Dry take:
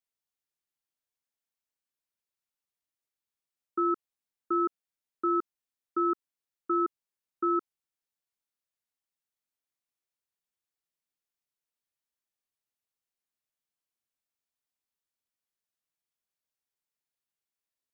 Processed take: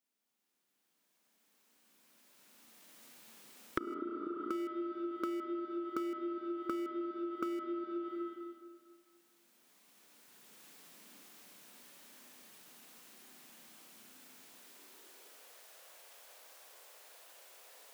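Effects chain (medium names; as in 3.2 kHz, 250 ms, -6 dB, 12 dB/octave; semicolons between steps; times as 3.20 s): recorder AGC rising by 9.8 dB/s; in parallel at -9 dB: small samples zeroed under -24.5 dBFS; on the sum: spring tank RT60 1.8 s, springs 31/35/49 ms, chirp 35 ms, DRR 1 dB; high-pass sweep 220 Hz -> 550 Hz, 14.44–15.62 s; compression 20:1, threshold -38 dBFS, peak gain reduction 34 dB; trim +3 dB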